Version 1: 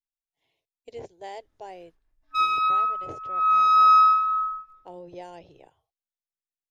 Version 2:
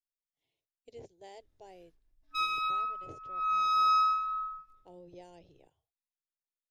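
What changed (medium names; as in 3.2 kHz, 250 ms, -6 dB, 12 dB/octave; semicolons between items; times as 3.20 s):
speech -6.0 dB; master: add peaking EQ 1.2 kHz -10 dB 2.1 oct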